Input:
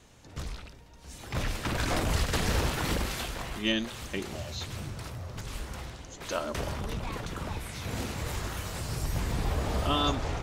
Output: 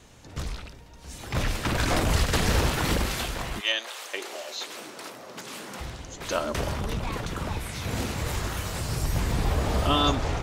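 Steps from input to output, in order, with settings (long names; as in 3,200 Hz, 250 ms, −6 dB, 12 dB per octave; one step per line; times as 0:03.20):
0:03.59–0:05.79: high-pass filter 630 Hz → 170 Hz 24 dB per octave
level +4.5 dB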